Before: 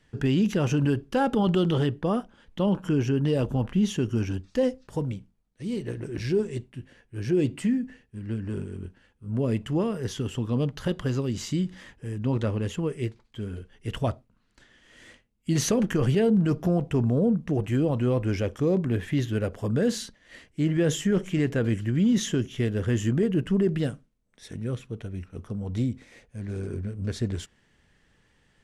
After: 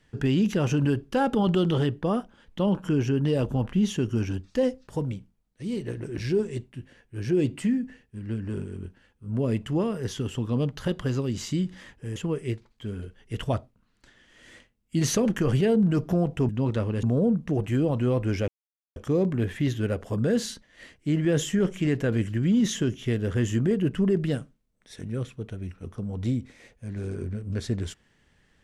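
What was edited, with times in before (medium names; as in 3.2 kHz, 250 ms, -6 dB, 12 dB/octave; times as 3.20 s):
12.16–12.70 s: move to 17.03 s
18.48 s: insert silence 0.48 s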